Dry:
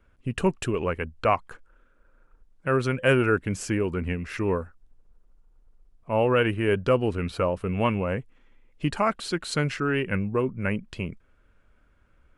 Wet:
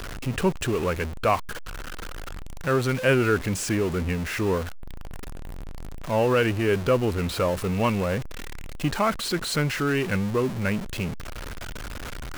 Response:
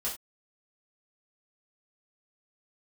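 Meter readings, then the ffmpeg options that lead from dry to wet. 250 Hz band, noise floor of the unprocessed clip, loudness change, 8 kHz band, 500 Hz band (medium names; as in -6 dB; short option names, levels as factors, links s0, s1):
+1.5 dB, -62 dBFS, +1.0 dB, +6.5 dB, +0.5 dB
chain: -af "aeval=exprs='val(0)+0.5*0.0422*sgn(val(0))':c=same,volume=0.891"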